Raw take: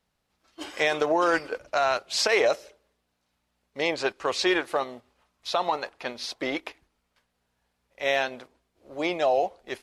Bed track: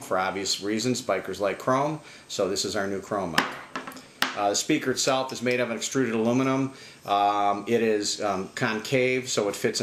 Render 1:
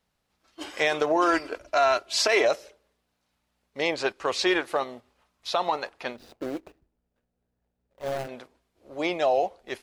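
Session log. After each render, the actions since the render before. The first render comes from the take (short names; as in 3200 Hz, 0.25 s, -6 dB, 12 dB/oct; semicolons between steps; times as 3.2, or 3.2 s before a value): 1.16–2.45 comb 3 ms, depth 54%; 6.16–8.29 median filter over 41 samples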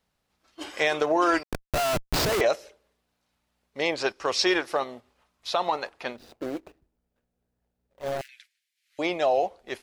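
1.43–2.41 Schmitt trigger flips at -23.5 dBFS; 4.01–4.76 bell 5400 Hz +10 dB 0.27 oct; 8.21–8.99 steep high-pass 1800 Hz 48 dB/oct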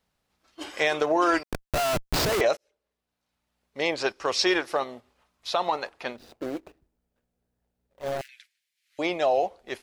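2.57–3.85 fade in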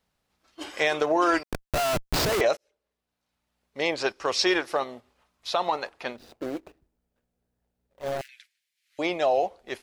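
nothing audible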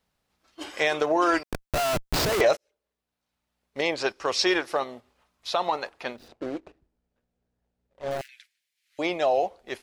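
2.4–3.81 sample leveller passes 1; 6.28–8.11 air absorption 67 m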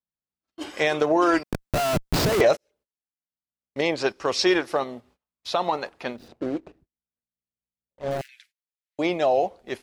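gate -60 dBFS, range -28 dB; bell 170 Hz +7.5 dB 2.5 oct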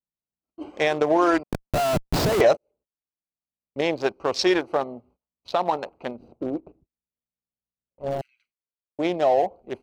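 Wiener smoothing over 25 samples; dynamic EQ 760 Hz, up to +3 dB, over -37 dBFS, Q 1.7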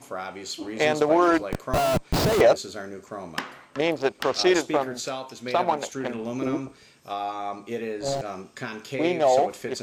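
add bed track -8 dB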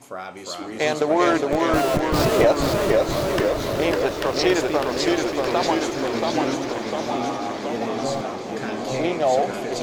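swelling echo 0.177 s, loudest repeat 5, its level -16 dB; echoes that change speed 0.351 s, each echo -1 st, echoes 3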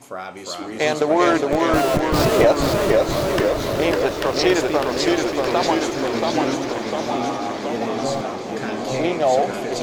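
gain +2 dB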